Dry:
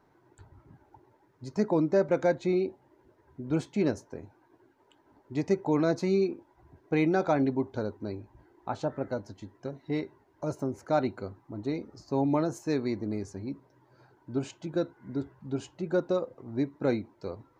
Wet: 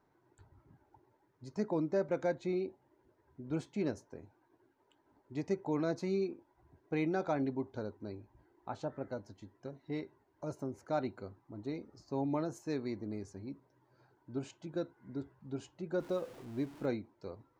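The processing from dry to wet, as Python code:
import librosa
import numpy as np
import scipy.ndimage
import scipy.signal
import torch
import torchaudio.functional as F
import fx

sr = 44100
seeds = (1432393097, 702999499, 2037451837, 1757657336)

y = fx.zero_step(x, sr, step_db=-41.5, at=(16.0, 16.86))
y = y * 10.0 ** (-8.0 / 20.0)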